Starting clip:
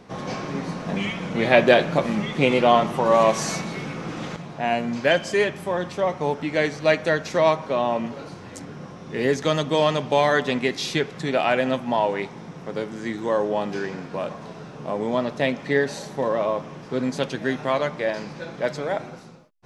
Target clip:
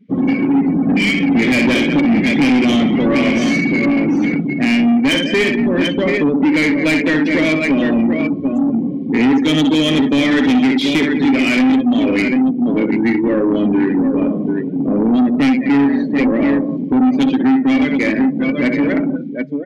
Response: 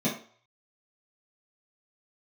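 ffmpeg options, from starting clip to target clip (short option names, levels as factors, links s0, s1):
-filter_complex "[0:a]asettb=1/sr,asplit=3[s0][s1][s2];[s0]atrim=end=13.754[s3];[s1]atrim=start=13.75:end=15.99,asetpts=PTS-STARTPTS,afade=t=in:d=0.004:c=qsin,afade=t=out:st=2.236:d=0.004:c=qsin,lowpass=4600[s4];[s2]atrim=start=15.986[s5];[s3][s4]acrossfade=d=0.004:c1=hsin:c2=qsin[s6];[s6][s5]acrossfade=d=0.004:c1=qsin:c2=hsin,aecho=1:1:64|189|737:0.447|0.188|0.376,afftdn=nr=35:nf=-32,asplit=3[s7][s8][s9];[s7]bandpass=f=270:t=q:w=8,volume=1[s10];[s8]bandpass=f=2290:t=q:w=8,volume=0.501[s11];[s9]bandpass=f=3010:t=q:w=8,volume=0.355[s12];[s10][s11][s12]amix=inputs=3:normalize=0,acompressor=threshold=0.00794:ratio=2,apsyclip=37.6,lowshelf=f=450:g=-2.5,asoftclip=type=tanh:threshold=0.299,adynamicequalizer=threshold=0.0316:dfrequency=1900:dqfactor=0.7:tfrequency=1900:tqfactor=0.7:attack=5:release=100:ratio=0.375:range=2:mode=cutabove:tftype=highshelf,volume=1.19"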